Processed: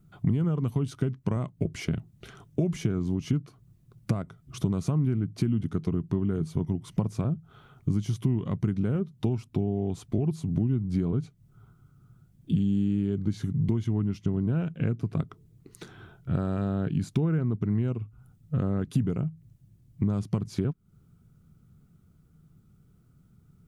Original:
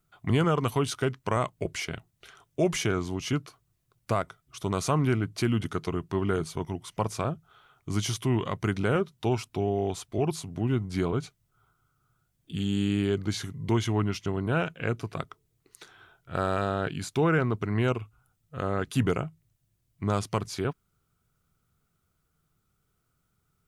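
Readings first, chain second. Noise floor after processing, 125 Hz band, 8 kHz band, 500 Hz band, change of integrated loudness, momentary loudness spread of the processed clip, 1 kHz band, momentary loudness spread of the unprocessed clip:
-61 dBFS, +3.0 dB, no reading, -6.0 dB, 0.0 dB, 7 LU, -12.0 dB, 9 LU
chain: bass shelf 330 Hz +11.5 dB; compression 8:1, threshold -32 dBFS, peak gain reduction 20.5 dB; peaking EQ 190 Hz +11 dB 2 oct

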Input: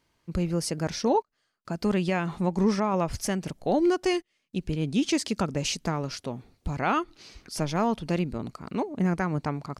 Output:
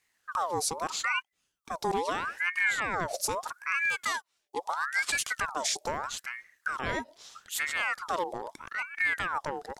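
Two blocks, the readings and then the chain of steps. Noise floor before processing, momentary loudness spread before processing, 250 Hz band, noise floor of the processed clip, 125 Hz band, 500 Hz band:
-75 dBFS, 11 LU, -18.5 dB, -79 dBFS, -18.5 dB, -8.5 dB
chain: tone controls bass +6 dB, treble +12 dB; ring modulator with a swept carrier 1.3 kHz, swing 55%, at 0.78 Hz; trim -5 dB

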